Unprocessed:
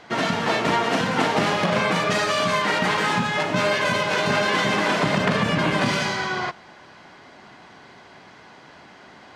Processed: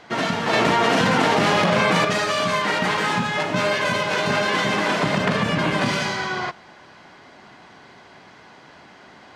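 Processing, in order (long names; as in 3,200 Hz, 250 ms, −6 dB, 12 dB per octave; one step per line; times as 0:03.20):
0:00.53–0:02.05: envelope flattener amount 100%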